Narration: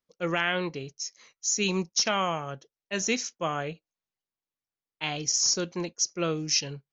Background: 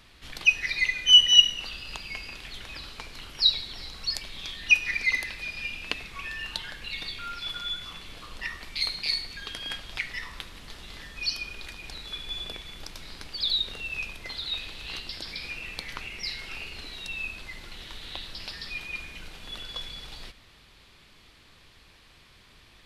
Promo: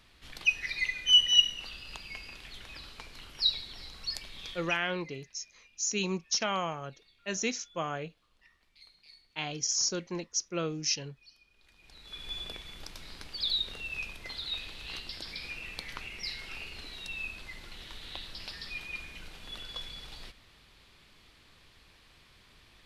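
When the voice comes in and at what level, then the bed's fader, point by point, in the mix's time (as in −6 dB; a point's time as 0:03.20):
4.35 s, −4.5 dB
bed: 0:04.53 −6 dB
0:05.00 −28.5 dB
0:11.49 −28.5 dB
0:12.26 −4 dB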